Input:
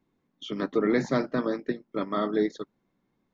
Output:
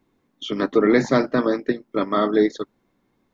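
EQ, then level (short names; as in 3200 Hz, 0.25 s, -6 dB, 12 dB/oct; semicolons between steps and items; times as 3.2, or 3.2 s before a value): bell 170 Hz -6 dB 0.49 oct; +8.0 dB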